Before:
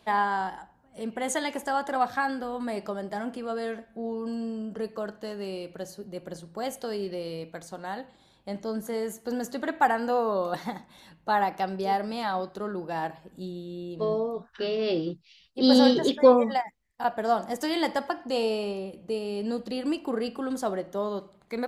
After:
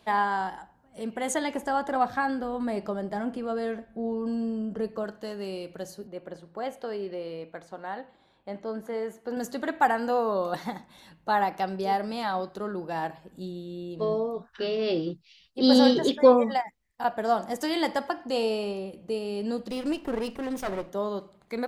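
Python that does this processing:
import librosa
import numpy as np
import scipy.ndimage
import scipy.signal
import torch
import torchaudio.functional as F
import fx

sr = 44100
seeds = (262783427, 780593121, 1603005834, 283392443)

y = fx.tilt_eq(x, sr, slope=-1.5, at=(1.34, 5.04))
y = fx.bass_treble(y, sr, bass_db=-7, treble_db=-15, at=(6.07, 9.37))
y = fx.lower_of_two(y, sr, delay_ms=0.33, at=(19.7, 20.9))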